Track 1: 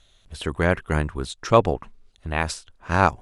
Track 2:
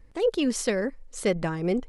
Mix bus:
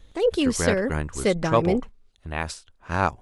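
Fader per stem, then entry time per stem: −4.5, +2.5 decibels; 0.00, 0.00 seconds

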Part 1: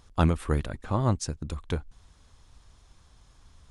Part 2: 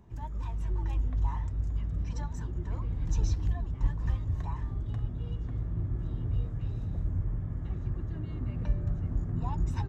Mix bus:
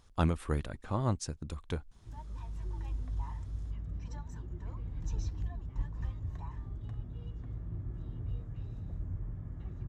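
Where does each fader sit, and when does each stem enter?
−6.0, −7.5 decibels; 0.00, 1.95 seconds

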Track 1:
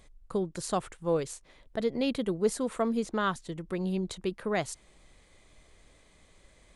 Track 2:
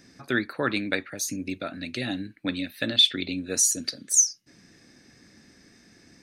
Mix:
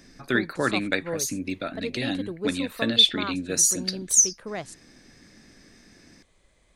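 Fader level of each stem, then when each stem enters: −4.0, +1.5 decibels; 0.00, 0.00 seconds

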